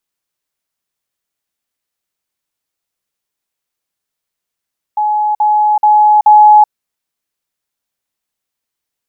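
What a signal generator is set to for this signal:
level staircase 845 Hz −10.5 dBFS, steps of 3 dB, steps 4, 0.38 s 0.05 s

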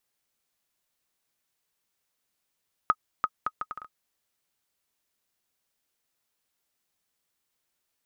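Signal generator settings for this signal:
bouncing ball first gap 0.34 s, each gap 0.66, 1,260 Hz, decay 50 ms −9.5 dBFS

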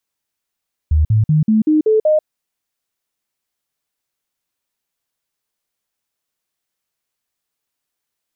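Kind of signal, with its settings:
stepped sweep 76.9 Hz up, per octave 2, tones 7, 0.14 s, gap 0.05 s −9.5 dBFS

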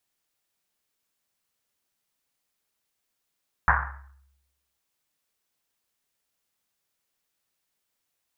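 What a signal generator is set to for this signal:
drum after Risset, pitch 68 Hz, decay 0.98 s, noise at 1,300 Hz, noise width 890 Hz, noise 65%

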